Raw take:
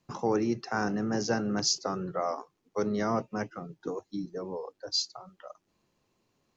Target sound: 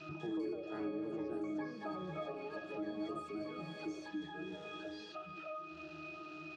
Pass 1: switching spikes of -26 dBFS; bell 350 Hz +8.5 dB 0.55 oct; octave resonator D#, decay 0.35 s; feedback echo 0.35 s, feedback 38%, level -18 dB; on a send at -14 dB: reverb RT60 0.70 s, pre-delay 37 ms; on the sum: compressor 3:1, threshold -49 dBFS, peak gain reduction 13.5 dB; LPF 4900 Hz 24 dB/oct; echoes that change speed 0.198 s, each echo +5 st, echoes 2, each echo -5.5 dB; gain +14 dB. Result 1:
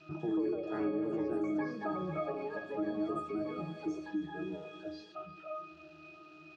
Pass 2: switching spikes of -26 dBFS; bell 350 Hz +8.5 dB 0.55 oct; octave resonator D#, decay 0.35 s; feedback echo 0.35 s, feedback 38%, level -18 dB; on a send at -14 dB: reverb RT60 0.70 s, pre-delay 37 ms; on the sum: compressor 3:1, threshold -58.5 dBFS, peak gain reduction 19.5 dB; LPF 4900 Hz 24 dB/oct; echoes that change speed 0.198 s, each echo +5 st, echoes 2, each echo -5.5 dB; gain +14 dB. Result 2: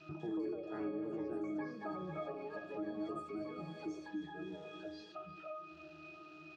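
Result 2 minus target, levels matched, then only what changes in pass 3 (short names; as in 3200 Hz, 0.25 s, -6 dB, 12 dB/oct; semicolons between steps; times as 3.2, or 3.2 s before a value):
switching spikes: distortion -7 dB
change: switching spikes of -19 dBFS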